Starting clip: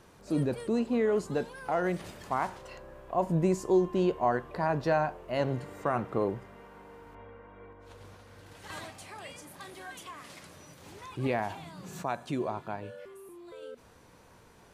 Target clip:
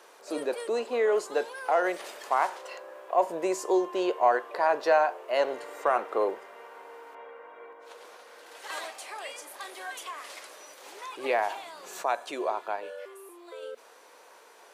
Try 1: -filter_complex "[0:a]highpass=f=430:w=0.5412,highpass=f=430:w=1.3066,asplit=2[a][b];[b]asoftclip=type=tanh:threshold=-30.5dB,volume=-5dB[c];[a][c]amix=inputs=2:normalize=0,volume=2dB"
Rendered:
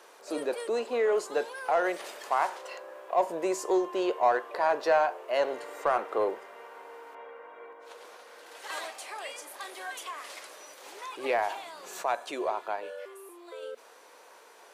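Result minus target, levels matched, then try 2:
soft clip: distortion +14 dB
-filter_complex "[0:a]highpass=f=430:w=0.5412,highpass=f=430:w=1.3066,asplit=2[a][b];[b]asoftclip=type=tanh:threshold=-18.5dB,volume=-5dB[c];[a][c]amix=inputs=2:normalize=0,volume=2dB"

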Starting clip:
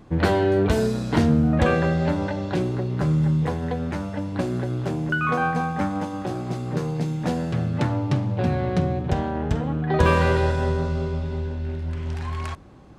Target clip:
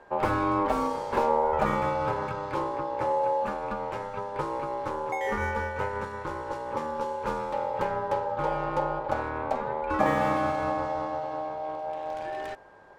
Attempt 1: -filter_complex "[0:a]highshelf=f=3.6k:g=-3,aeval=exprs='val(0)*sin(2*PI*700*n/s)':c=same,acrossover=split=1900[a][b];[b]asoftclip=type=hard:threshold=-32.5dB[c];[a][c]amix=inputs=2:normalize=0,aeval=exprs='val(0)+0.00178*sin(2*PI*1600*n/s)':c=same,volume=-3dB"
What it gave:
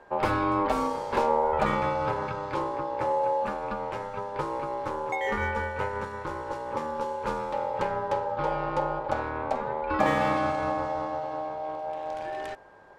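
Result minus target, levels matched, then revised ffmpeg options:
hard clip: distortion -8 dB
-filter_complex "[0:a]highshelf=f=3.6k:g=-3,aeval=exprs='val(0)*sin(2*PI*700*n/s)':c=same,acrossover=split=1900[a][b];[b]asoftclip=type=hard:threshold=-40.5dB[c];[a][c]amix=inputs=2:normalize=0,aeval=exprs='val(0)+0.00178*sin(2*PI*1600*n/s)':c=same,volume=-3dB"

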